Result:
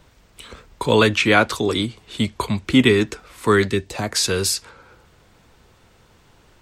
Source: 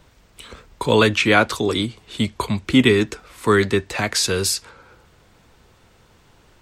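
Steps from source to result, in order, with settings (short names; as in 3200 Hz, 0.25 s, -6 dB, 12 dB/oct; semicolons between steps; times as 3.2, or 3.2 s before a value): 3.67–4.15 bell 710 Hz -> 3400 Hz -10.5 dB 1.5 oct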